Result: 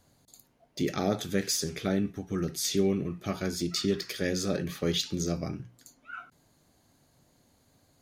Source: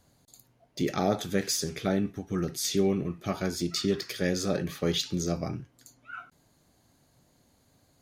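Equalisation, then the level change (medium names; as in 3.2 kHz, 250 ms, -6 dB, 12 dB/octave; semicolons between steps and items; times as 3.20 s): hum notches 60/120/180 Hz; dynamic bell 840 Hz, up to -5 dB, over -42 dBFS, Q 1.3; 0.0 dB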